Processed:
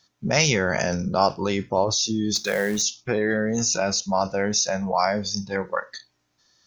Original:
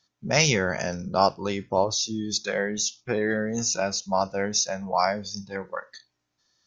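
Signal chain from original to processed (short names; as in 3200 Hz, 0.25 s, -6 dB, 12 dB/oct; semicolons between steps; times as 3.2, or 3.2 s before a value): in parallel at -2.5 dB: negative-ratio compressor -31 dBFS, ratio -1; 2.35–2.82 on the sum: short-mantissa float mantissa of 2-bit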